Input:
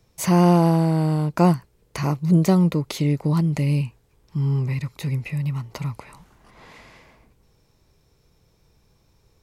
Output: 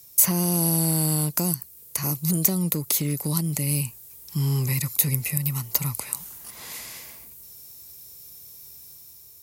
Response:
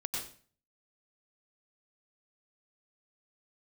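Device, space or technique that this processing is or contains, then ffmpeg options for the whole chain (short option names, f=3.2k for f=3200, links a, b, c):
FM broadcast chain: -filter_complex "[0:a]highpass=f=54:w=0.5412,highpass=f=54:w=1.3066,dynaudnorm=f=180:g=7:m=4dB,acrossover=split=430|2200|4600[a][b][c][d];[a]acompressor=threshold=-15dB:ratio=4[e];[b]acompressor=threshold=-30dB:ratio=4[f];[c]acompressor=threshold=-49dB:ratio=4[g];[d]acompressor=threshold=-44dB:ratio=4[h];[e][f][g][h]amix=inputs=4:normalize=0,aemphasis=mode=production:type=75fm,alimiter=limit=-13dB:level=0:latency=1:release=390,asoftclip=type=hard:threshold=-14.5dB,lowpass=f=15k:w=0.5412,lowpass=f=15k:w=1.3066,aemphasis=mode=production:type=75fm,volume=-3dB"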